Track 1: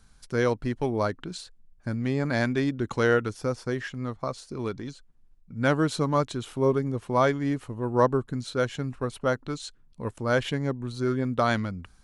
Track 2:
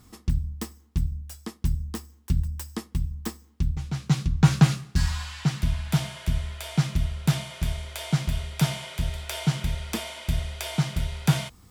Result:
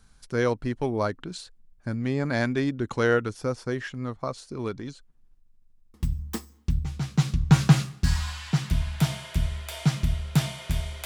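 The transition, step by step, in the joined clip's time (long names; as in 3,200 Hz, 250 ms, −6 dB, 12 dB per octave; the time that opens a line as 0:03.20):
track 1
0:05.38: stutter in place 0.08 s, 7 plays
0:05.94: continue with track 2 from 0:02.86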